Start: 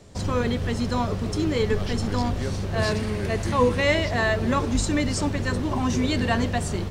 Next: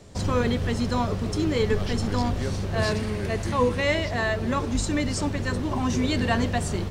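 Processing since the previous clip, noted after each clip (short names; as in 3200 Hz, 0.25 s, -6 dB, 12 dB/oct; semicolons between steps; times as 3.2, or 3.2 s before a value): vocal rider 2 s; gain -1.5 dB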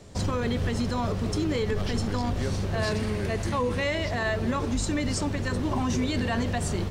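limiter -18 dBFS, peak gain reduction 7.5 dB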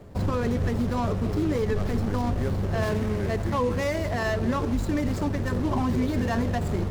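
median filter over 15 samples; reverse; upward compressor, threshold -32 dBFS; reverse; gain +2 dB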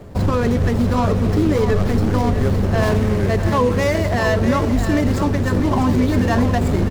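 echo 0.65 s -8.5 dB; gain +8 dB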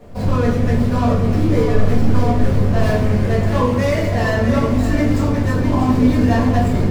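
shoebox room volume 160 m³, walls mixed, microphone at 1.8 m; gain -7.5 dB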